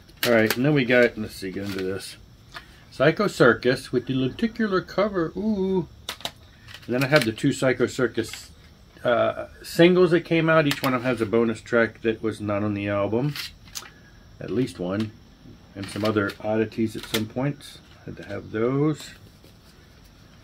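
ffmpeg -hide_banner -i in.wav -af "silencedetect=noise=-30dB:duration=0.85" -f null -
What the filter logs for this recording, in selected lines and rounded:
silence_start: 19.06
silence_end: 20.43 | silence_duration: 1.37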